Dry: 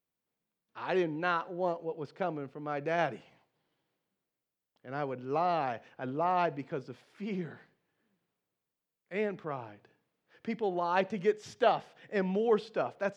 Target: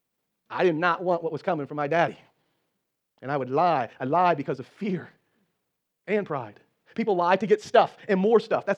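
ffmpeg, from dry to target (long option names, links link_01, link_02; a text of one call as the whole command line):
ffmpeg -i in.wav -af "atempo=1.5,volume=8.5dB" out.wav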